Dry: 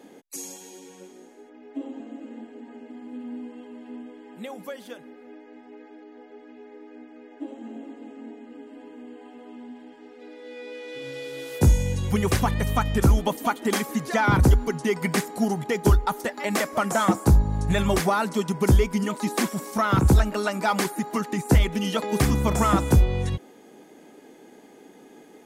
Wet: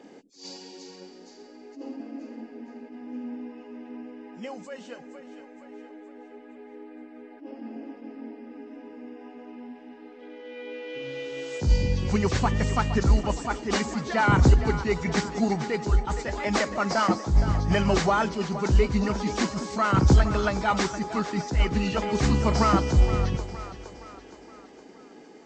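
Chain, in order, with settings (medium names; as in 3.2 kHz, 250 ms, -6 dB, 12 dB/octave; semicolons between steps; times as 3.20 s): knee-point frequency compression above 2.3 kHz 1.5:1; two-band feedback delay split 400 Hz, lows 198 ms, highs 467 ms, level -12.5 dB; attacks held to a fixed rise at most 160 dB/s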